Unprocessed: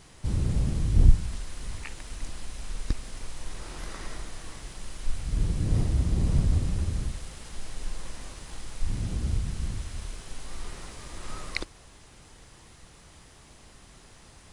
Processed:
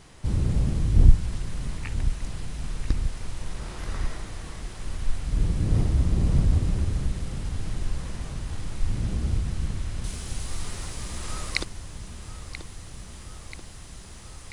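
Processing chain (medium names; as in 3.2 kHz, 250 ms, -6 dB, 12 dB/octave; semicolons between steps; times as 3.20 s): treble shelf 3.8 kHz -4 dB, from 10.04 s +7 dB; filtered feedback delay 984 ms, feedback 73%, low-pass 4.2 kHz, level -11.5 dB; trim +2.5 dB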